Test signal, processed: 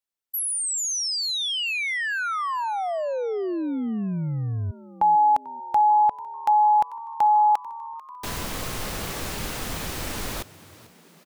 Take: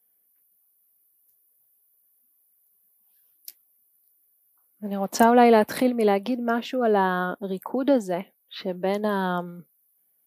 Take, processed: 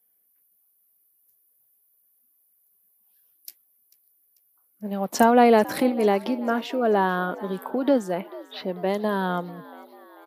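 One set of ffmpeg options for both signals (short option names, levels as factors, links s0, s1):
-filter_complex "[0:a]asplit=6[s0][s1][s2][s3][s4][s5];[s1]adelay=442,afreqshift=75,volume=0.106[s6];[s2]adelay=884,afreqshift=150,volume=0.0603[s7];[s3]adelay=1326,afreqshift=225,volume=0.0343[s8];[s4]adelay=1768,afreqshift=300,volume=0.0197[s9];[s5]adelay=2210,afreqshift=375,volume=0.0112[s10];[s0][s6][s7][s8][s9][s10]amix=inputs=6:normalize=0"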